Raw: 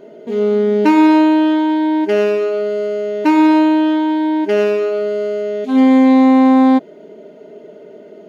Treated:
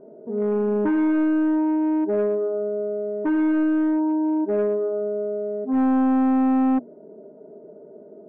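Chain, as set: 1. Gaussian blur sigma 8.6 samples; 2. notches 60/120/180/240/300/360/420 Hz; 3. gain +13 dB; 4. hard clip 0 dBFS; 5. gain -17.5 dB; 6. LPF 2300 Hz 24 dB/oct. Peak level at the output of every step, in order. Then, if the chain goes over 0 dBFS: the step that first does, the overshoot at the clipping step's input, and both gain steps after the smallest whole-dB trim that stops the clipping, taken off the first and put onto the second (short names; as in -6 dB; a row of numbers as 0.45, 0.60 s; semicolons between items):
-3.5, -4.0, +9.0, 0.0, -17.5, -16.5 dBFS; step 3, 9.0 dB; step 3 +4 dB, step 5 -8.5 dB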